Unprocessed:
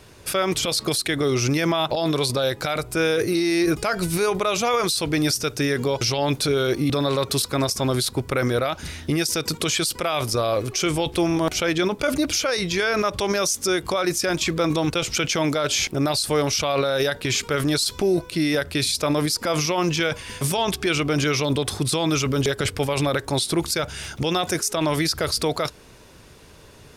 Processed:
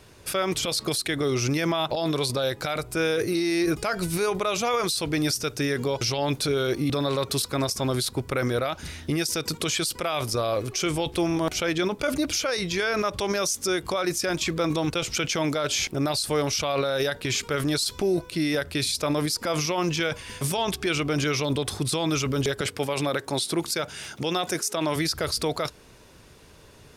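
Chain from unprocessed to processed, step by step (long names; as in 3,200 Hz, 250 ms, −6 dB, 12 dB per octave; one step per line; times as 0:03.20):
0:22.61–0:24.96: high-pass filter 150 Hz 12 dB per octave
level −3.5 dB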